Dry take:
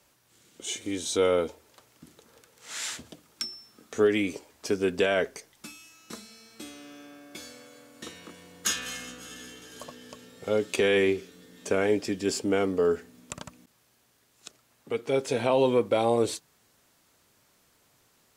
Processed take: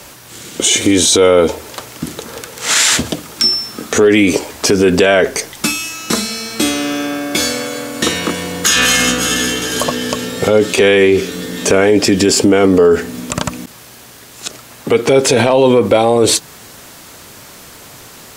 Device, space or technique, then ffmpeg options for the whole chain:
loud club master: -af "acompressor=threshold=-33dB:ratio=1.5,asoftclip=type=hard:threshold=-18.5dB,alimiter=level_in=29.5dB:limit=-1dB:release=50:level=0:latency=1,volume=-1dB"

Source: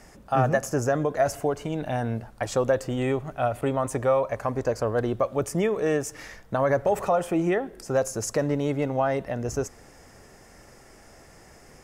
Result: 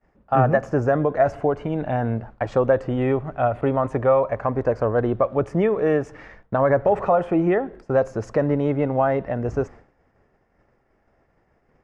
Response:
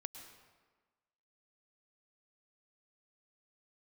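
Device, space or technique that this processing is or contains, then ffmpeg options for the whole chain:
hearing-loss simulation: -af "lowpass=1900,agate=range=-33dB:threshold=-40dB:ratio=3:detection=peak,volume=4.5dB"

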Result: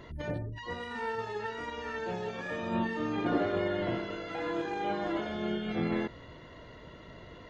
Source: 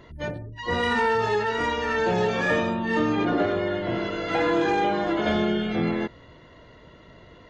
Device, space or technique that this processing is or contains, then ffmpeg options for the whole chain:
de-esser from a sidechain: -filter_complex "[0:a]asplit=2[link_01][link_02];[link_02]highpass=frequency=4900:width=0.5412,highpass=frequency=4900:width=1.3066,apad=whole_len=330333[link_03];[link_01][link_03]sidechaincompress=threshold=-60dB:ratio=8:attack=1.8:release=49"

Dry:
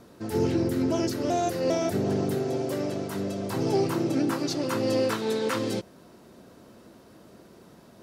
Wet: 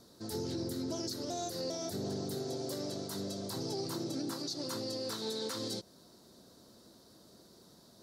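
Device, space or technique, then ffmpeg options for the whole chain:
over-bright horn tweeter: -af "highshelf=frequency=3300:width_type=q:width=3:gain=7.5,alimiter=limit=-19.5dB:level=0:latency=1:release=130,volume=-9dB"

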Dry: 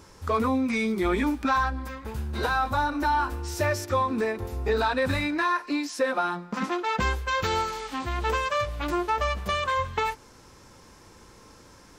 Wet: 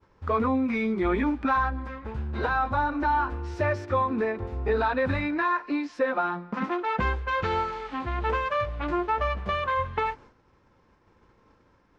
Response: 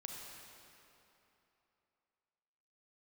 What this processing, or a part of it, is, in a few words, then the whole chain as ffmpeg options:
hearing-loss simulation: -af "lowpass=2400,agate=range=-33dB:threshold=-44dB:ratio=3:detection=peak"

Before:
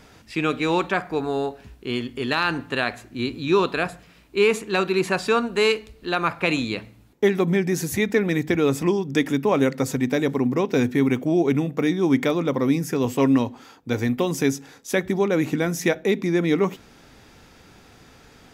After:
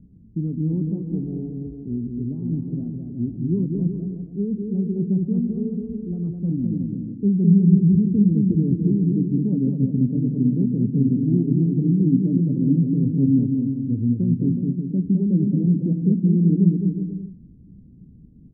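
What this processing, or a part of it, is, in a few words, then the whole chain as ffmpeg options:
the neighbour's flat through the wall: -filter_complex "[0:a]asettb=1/sr,asplit=3[link_01][link_02][link_03];[link_01]atrim=end=2.084[link_04];[link_02]atrim=start=2.08:end=2.59,asetpts=PTS-STARTPTS,afade=type=in:duration=0.004:curve=qsin,afade=type=out:start_time=0.506:duration=0.004:curve=qsin,lowpass=frequency=1200:width=0.5412,lowpass=frequency=1200:width=1.3066[link_05];[link_03]atrim=start=2.586[link_06];[link_04][link_05]acrossfade=duration=0.004:curve1=hsin:curve2=qsin[link_07];[link_07][link_06]acrossfade=duration=0.004:curve1=qsin:curve2=hsin,lowpass=frequency=250:width=0.5412,lowpass=frequency=250:width=1.3066,equalizer=frequency=180:width_type=o:width=0.58:gain=7,aecho=1:1:210|367.5|485.6|574.2|640.7:0.631|0.398|0.251|0.158|0.1,volume=2.5dB"

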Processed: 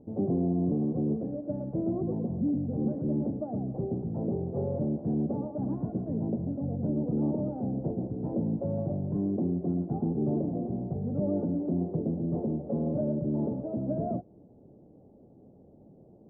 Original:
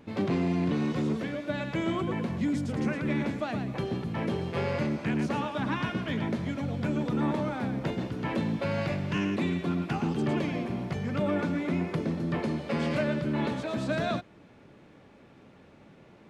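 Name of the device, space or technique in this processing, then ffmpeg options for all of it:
under water: -af "lowpass=frequency=520:width=0.5412,lowpass=frequency=520:width=1.3066,equalizer=frequency=750:width_type=o:width=0.51:gain=9.5"

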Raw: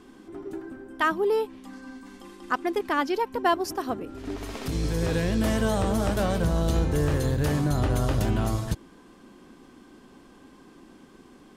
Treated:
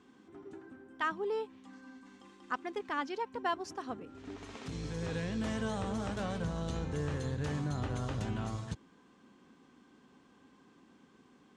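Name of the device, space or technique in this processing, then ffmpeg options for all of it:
car door speaker: -af "highpass=87,equalizer=frequency=340:width_type=q:width=4:gain=-6,equalizer=frequency=620:width_type=q:width=4:gain=-5,equalizer=frequency=4900:width_type=q:width=4:gain=-4,lowpass=frequency=7600:width=0.5412,lowpass=frequency=7600:width=1.3066,volume=-9dB"

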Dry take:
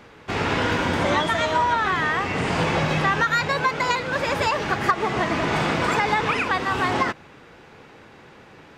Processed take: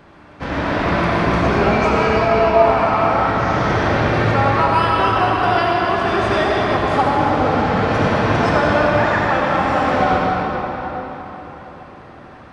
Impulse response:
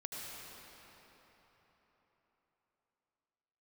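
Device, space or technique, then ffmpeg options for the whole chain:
slowed and reverbed: -filter_complex "[0:a]asetrate=30870,aresample=44100[link_01];[1:a]atrim=start_sample=2205[link_02];[link_01][link_02]afir=irnorm=-1:irlink=0,volume=6dB"

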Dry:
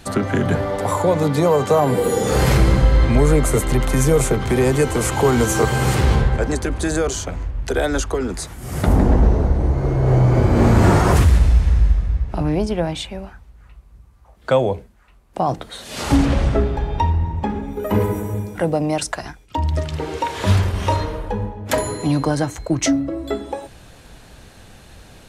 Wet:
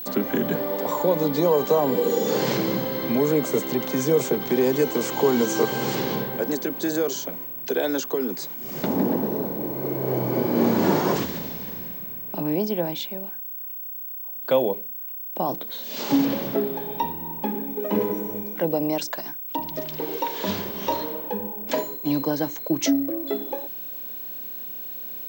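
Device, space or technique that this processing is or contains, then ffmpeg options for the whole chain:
old television with a line whistle: -filter_complex "[0:a]asplit=3[link_01][link_02][link_03];[link_01]afade=type=out:start_time=21.71:duration=0.02[link_04];[link_02]agate=range=-33dB:threshold=-17dB:ratio=3:detection=peak,afade=type=in:start_time=21.71:duration=0.02,afade=type=out:start_time=22.4:duration=0.02[link_05];[link_03]afade=type=in:start_time=22.4:duration=0.02[link_06];[link_04][link_05][link_06]amix=inputs=3:normalize=0,adynamicequalizer=threshold=0.00316:dfrequency=2500:dqfactor=5.3:tfrequency=2500:tqfactor=5.3:attack=5:release=100:ratio=0.375:range=2.5:mode=cutabove:tftype=bell,highpass=frequency=190:width=0.5412,highpass=frequency=190:width=1.3066,equalizer=frequency=720:width_type=q:width=4:gain=-5,equalizer=frequency=1300:width_type=q:width=4:gain=-9,equalizer=frequency=1900:width_type=q:width=4:gain=-5,lowpass=frequency=6500:width=0.5412,lowpass=frequency=6500:width=1.3066,aeval=exprs='val(0)+0.0355*sin(2*PI*15734*n/s)':channel_layout=same,volume=-2.5dB"

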